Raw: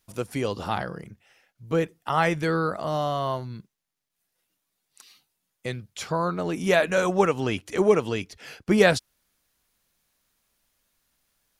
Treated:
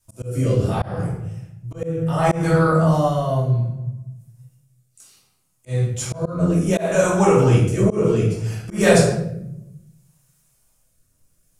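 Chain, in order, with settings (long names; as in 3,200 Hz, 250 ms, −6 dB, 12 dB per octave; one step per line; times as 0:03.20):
octave-band graphic EQ 125/250/2,000/4,000/8,000 Hz +10/−8/−7/−8/+9 dB
rectangular room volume 270 cubic metres, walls mixed, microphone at 2.7 metres
rotating-speaker cabinet horn 0.65 Hz
volume swells 188 ms
level +1.5 dB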